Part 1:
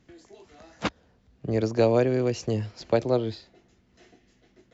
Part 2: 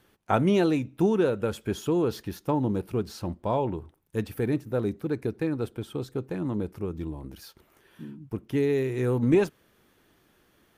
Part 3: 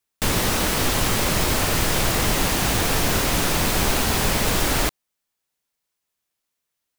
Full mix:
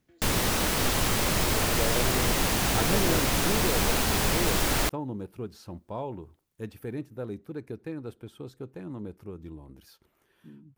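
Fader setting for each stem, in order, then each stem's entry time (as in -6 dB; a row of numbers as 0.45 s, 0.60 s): -11.0 dB, -8.5 dB, -4.5 dB; 0.00 s, 2.45 s, 0.00 s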